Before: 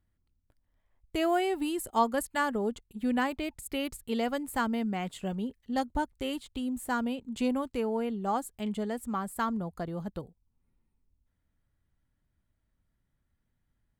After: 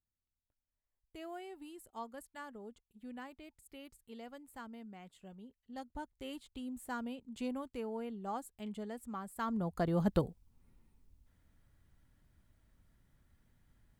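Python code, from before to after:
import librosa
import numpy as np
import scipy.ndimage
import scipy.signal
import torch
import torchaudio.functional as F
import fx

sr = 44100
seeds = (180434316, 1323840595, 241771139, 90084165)

y = fx.gain(x, sr, db=fx.line((5.47, -19.0), (6.39, -10.0), (9.35, -10.0), (9.64, -0.5), (10.17, 8.0)))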